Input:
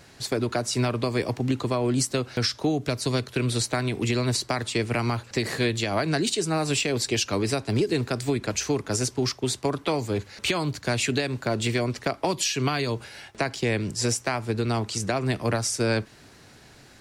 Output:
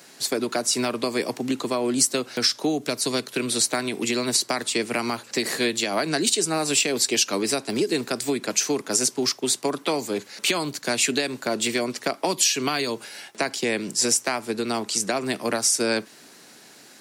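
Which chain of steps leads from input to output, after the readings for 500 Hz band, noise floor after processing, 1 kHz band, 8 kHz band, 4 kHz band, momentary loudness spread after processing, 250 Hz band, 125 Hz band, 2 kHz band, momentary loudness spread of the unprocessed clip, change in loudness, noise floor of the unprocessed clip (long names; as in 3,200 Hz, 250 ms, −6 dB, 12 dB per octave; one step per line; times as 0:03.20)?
+1.0 dB, −49 dBFS, +1.5 dB, +7.5 dB, +4.5 dB, 7 LU, +0.5 dB, −12.0 dB, +2.0 dB, 3 LU, +2.5 dB, −51 dBFS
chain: high-pass filter 190 Hz 24 dB per octave
high-shelf EQ 5,900 Hz +11 dB
level +1 dB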